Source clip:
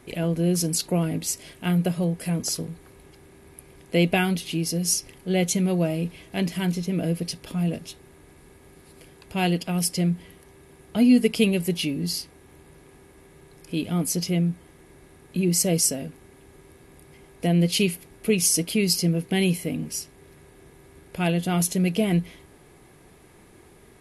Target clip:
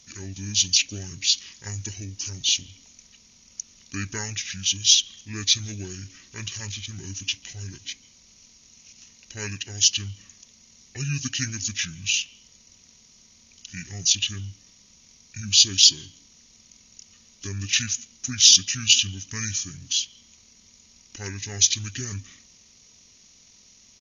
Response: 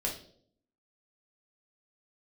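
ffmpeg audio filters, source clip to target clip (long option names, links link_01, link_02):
-filter_complex "[0:a]aexciter=amount=10.9:drive=2.7:freq=3600,asetrate=25476,aresample=44100,atempo=1.73107,asplit=2[link_01][link_02];[link_02]asplit=3[link_03][link_04][link_05];[link_03]bandpass=frequency=270:width_type=q:width=8,volume=0dB[link_06];[link_04]bandpass=frequency=2290:width_type=q:width=8,volume=-6dB[link_07];[link_05]bandpass=frequency=3010:width_type=q:width=8,volume=-9dB[link_08];[link_06][link_07][link_08]amix=inputs=3:normalize=0[link_09];[1:a]atrim=start_sample=2205,adelay=142[link_10];[link_09][link_10]afir=irnorm=-1:irlink=0,volume=-18dB[link_11];[link_01][link_11]amix=inputs=2:normalize=0,volume=-12dB"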